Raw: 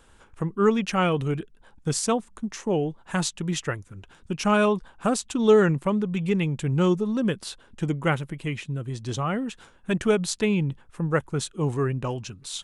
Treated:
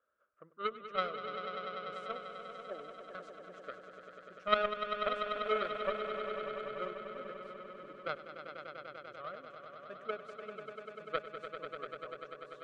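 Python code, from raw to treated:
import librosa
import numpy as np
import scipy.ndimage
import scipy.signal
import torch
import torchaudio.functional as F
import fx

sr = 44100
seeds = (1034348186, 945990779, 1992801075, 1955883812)

y = fx.double_bandpass(x, sr, hz=870.0, octaves=1.1)
y = fx.cheby_harmonics(y, sr, harmonics=(3,), levels_db=(-11,), full_scale_db=-15.0)
y = fx.echo_swell(y, sr, ms=98, loudest=5, wet_db=-10)
y = y * librosa.db_to_amplitude(2.5)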